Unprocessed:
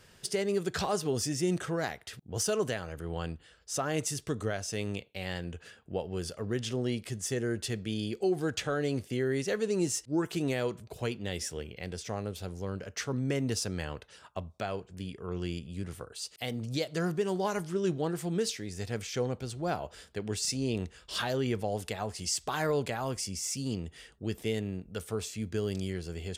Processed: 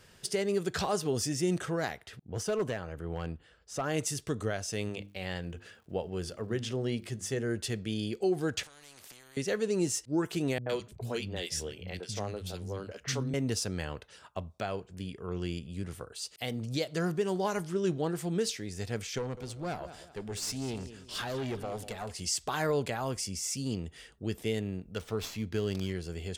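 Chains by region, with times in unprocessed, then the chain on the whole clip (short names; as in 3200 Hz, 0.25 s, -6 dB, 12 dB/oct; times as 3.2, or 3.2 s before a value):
2.07–3.84 high shelf 3500 Hz -10.5 dB + hard clip -25.5 dBFS
4.88–7.48 high shelf 5800 Hz -5 dB + notches 50/100/150/200/250/300/350 Hz + crackle 170/s -59 dBFS
8.63–9.37 low shelf 370 Hz -6.5 dB + compressor 4:1, threshold -44 dBFS + spectral compressor 4:1
10.58–13.34 dynamic EQ 3900 Hz, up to +4 dB, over -54 dBFS, Q 1 + gate with hold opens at -38 dBFS, closes at -44 dBFS + three bands offset in time lows, mids, highs 80/110 ms, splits 220/1600 Hz
19.18–22.11 feedback echo 0.191 s, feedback 35%, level -15 dB + tube stage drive 29 dB, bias 0.5
24.96–25.93 LPF 5100 Hz + high shelf 3700 Hz +8.5 dB + running maximum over 3 samples
whole clip: dry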